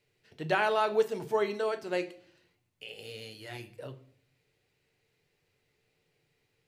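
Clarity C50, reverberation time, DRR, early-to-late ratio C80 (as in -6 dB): 16.0 dB, 0.55 s, 6.5 dB, 20.0 dB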